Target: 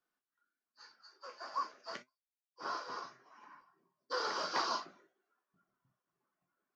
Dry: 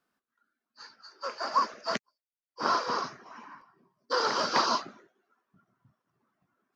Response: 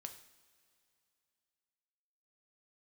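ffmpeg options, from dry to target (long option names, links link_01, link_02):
-filter_complex "[1:a]atrim=start_sample=2205,atrim=end_sample=4410,asetrate=66150,aresample=44100[link_01];[0:a][link_01]afir=irnorm=-1:irlink=0,asplit=3[link_02][link_03][link_04];[link_02]afade=type=out:start_time=1.17:duration=0.02[link_05];[link_03]flanger=delay=6.4:depth=2.5:regen=65:speed=1.8:shape=triangular,afade=type=in:start_time=1.17:duration=0.02,afade=type=out:start_time=3.41:duration=0.02[link_06];[link_04]afade=type=in:start_time=3.41:duration=0.02[link_07];[link_05][link_06][link_07]amix=inputs=3:normalize=0,equalizer=frequency=99:width_type=o:width=1.8:gain=-8.5"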